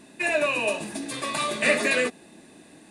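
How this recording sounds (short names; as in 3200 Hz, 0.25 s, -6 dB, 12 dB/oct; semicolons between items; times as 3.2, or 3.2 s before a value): noise floor -52 dBFS; spectral tilt -2.5 dB/oct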